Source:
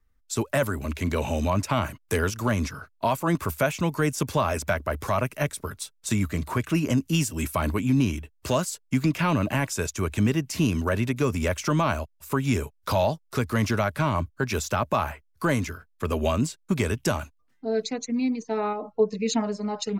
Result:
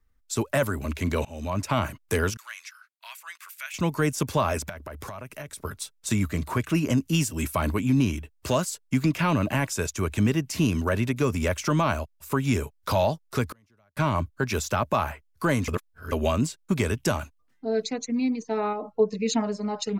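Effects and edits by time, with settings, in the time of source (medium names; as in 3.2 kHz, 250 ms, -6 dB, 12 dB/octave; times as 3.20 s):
1.25–1.74 s: fade in, from -24 dB
2.37–3.74 s: ladder high-pass 1.5 kHz, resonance 30%
4.69–5.65 s: compression 16:1, threshold -33 dBFS
13.51–13.97 s: inverted gate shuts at -28 dBFS, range -39 dB
15.68–16.12 s: reverse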